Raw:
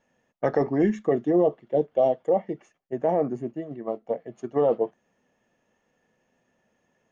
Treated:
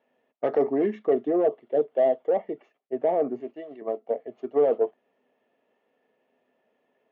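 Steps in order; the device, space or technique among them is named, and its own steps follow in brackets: 3.40–3.82 s: tilt EQ +3.5 dB/octave; overdrive pedal into a guitar cabinet (overdrive pedal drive 13 dB, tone 4.2 kHz, clips at -10 dBFS; cabinet simulation 110–4100 Hz, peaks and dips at 170 Hz -3 dB, 260 Hz +8 dB, 420 Hz +10 dB, 650 Hz +6 dB, 1.6 kHz -5 dB); trim -8.5 dB

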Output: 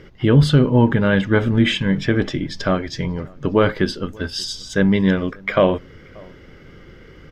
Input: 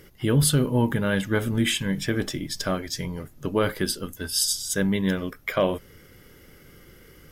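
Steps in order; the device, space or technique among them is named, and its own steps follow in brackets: shout across a valley (distance through air 190 m; echo from a far wall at 100 m, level -26 dB); trim +8 dB

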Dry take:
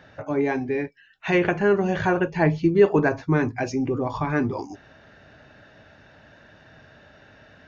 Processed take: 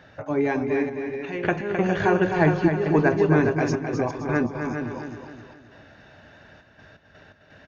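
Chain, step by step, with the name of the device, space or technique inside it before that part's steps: delay 410 ms -7.5 dB; trance gate with a delay (trance gate "xxxxx.x.x.xxxxx." 84 bpm -12 dB; feedback delay 261 ms, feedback 42%, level -7 dB)

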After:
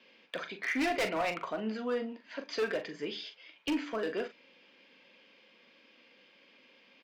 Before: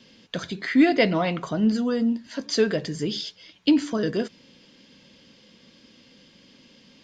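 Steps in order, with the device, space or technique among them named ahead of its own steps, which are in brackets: megaphone (band-pass 480–2600 Hz; peaking EQ 2.4 kHz +9 dB 0.25 oct; hard clipper -24 dBFS, distortion -8 dB; doubling 41 ms -9 dB); trim -3.5 dB

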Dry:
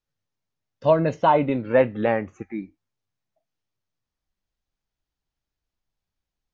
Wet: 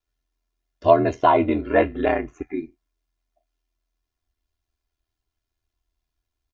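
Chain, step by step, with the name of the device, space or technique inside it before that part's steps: ring-modulated robot voice (ring modulator 41 Hz; comb 2.9 ms, depth 78%); trim +3 dB

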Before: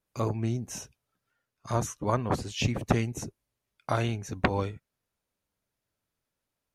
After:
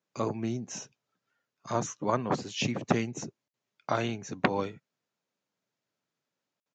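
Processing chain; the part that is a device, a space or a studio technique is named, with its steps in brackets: call with lost packets (high-pass 140 Hz 24 dB/octave; resampled via 16 kHz; lost packets of 60 ms random)

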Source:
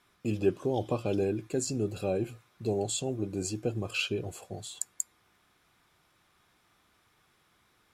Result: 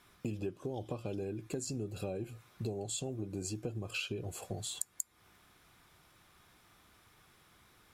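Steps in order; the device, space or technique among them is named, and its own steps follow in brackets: ASMR close-microphone chain (bass shelf 130 Hz +5.5 dB; compression 10:1, threshold -38 dBFS, peak gain reduction 19 dB; treble shelf 11 kHz +6 dB); trim +3 dB

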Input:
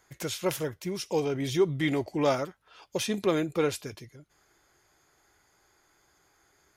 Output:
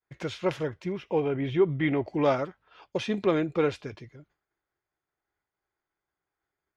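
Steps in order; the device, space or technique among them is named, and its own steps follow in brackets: hearing-loss simulation (low-pass 3 kHz 12 dB/octave; expander -54 dBFS); 0.92–2.05 s: high-order bell 6.6 kHz -15 dB; trim +1.5 dB

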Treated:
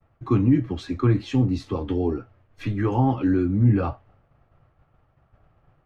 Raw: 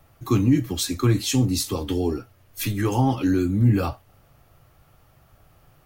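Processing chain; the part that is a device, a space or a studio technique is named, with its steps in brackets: hearing-loss simulation (low-pass 1.9 kHz 12 dB/octave; expander -50 dBFS)

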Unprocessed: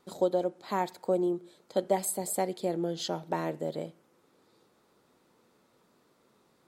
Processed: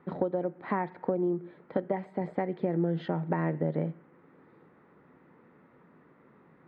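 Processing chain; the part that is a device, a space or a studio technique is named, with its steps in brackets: bass amplifier (compression 5:1, threshold -33 dBFS, peak gain reduction 11.5 dB; cabinet simulation 61–2100 Hz, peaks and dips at 67 Hz +8 dB, 160 Hz +9 dB, 270 Hz +4 dB, 650 Hz -3 dB, 1.9 kHz +6 dB); trim +6.5 dB

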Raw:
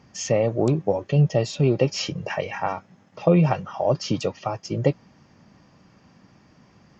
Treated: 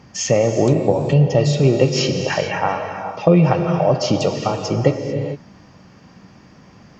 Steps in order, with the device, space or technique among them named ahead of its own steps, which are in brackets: gated-style reverb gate 470 ms flat, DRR 5.5 dB; parallel compression (in parallel at -2 dB: compression, threshold -25 dBFS, peak gain reduction 12.5 dB); on the sum: trim +2.5 dB

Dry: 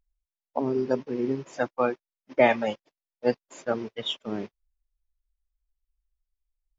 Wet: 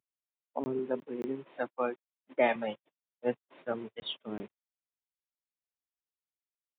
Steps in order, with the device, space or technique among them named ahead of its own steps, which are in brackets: call with lost packets (high-pass 110 Hz 24 dB/octave; resampled via 8 kHz; lost packets of 20 ms); 0.79–2.56 s: high-pass 190 Hz 12 dB/octave; trim -7 dB

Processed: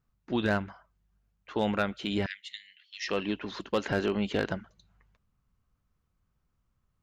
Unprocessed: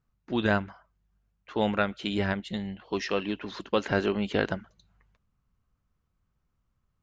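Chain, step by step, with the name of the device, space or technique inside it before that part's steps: 2.26–3.08 s: elliptic high-pass 1.9 kHz, stop band 50 dB; clipper into limiter (hard clipper -15.5 dBFS, distortion -21 dB; peak limiter -18 dBFS, peak gain reduction 2.5 dB)

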